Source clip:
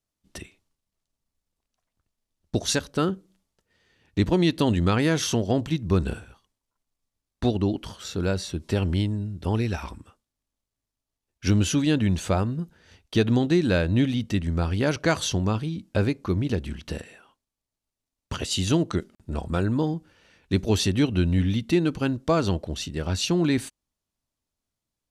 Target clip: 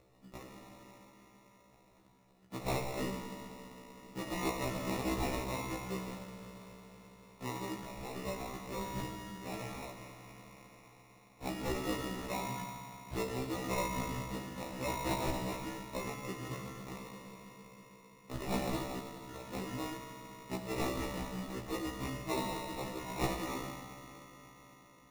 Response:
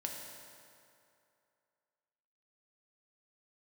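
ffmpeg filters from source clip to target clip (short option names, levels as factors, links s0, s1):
-filter_complex "[0:a]acrossover=split=480|3300[s0][s1][s2];[s0]acompressor=threshold=0.0251:ratio=10[s3];[s3][s1][s2]amix=inputs=3:normalize=0,highshelf=f=3700:g=5[s4];[1:a]atrim=start_sample=2205[s5];[s4][s5]afir=irnorm=-1:irlink=0,acompressor=mode=upward:threshold=0.0224:ratio=2.5,highpass=f=110:w=0.5412,highpass=f=110:w=1.3066,equalizer=f=680:t=q:w=4:g=-5,equalizer=f=1900:t=q:w=4:g=-7,equalizer=f=3000:t=q:w=4:g=7,lowpass=f=7400:w=0.5412,lowpass=f=7400:w=1.3066,acrusher=samples=28:mix=1:aa=0.000001,afftfilt=real='re*1.73*eq(mod(b,3),0)':imag='im*1.73*eq(mod(b,3),0)':win_size=2048:overlap=0.75,volume=0.531"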